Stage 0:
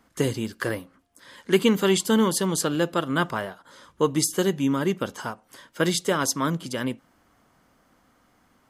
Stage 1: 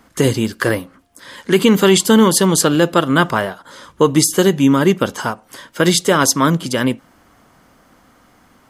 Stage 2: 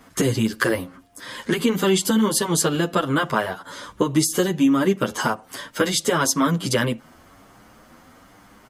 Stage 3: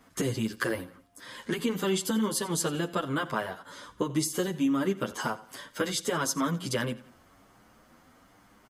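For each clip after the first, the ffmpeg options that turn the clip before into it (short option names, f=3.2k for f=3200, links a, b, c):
-af "alimiter=level_in=12dB:limit=-1dB:release=50:level=0:latency=1,volume=-1dB"
-filter_complex "[0:a]acompressor=threshold=-18dB:ratio=6,asplit=2[a][b];[b]adelay=8.6,afreqshift=1.1[c];[a][c]amix=inputs=2:normalize=1,volume=4.5dB"
-af "aecho=1:1:87|174|261:0.119|0.0464|0.0181,volume=-9dB"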